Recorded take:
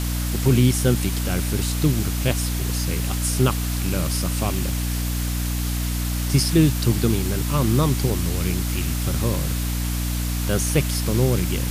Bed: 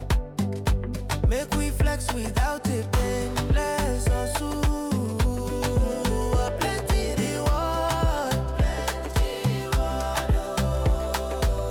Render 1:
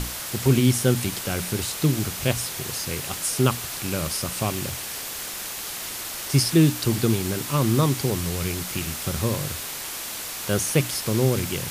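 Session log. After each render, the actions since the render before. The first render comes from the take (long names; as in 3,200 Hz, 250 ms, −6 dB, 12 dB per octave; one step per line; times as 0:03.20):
mains-hum notches 60/120/180/240/300 Hz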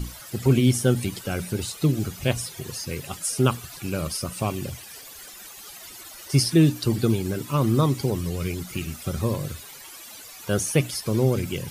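broadband denoise 15 dB, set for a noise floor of −33 dBFS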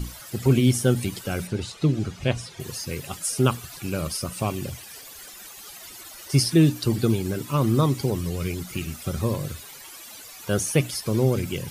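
0:01.47–0:02.60: high-frequency loss of the air 79 metres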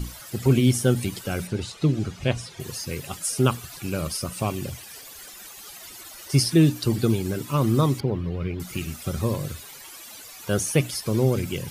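0:08.00–0:08.60: high-frequency loss of the air 360 metres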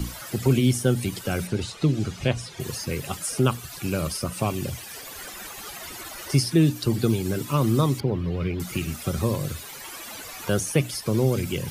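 multiband upward and downward compressor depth 40%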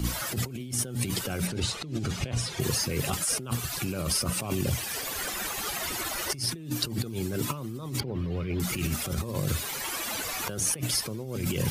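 compressor whose output falls as the input rises −31 dBFS, ratio −1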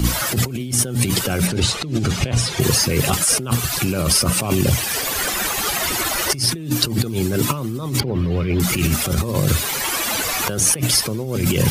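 level +11 dB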